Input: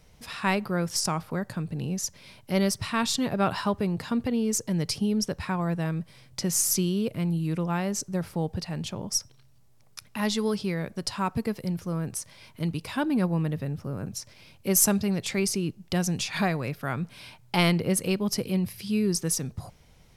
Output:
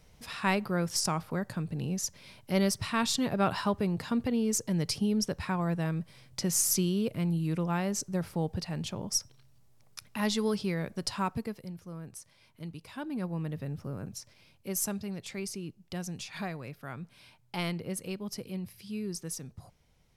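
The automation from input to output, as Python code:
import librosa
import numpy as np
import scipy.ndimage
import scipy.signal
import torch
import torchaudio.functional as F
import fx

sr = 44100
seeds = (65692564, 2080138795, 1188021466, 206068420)

y = fx.gain(x, sr, db=fx.line((11.21, -2.5), (11.72, -12.5), (12.92, -12.5), (13.82, -4.0), (14.76, -11.0)))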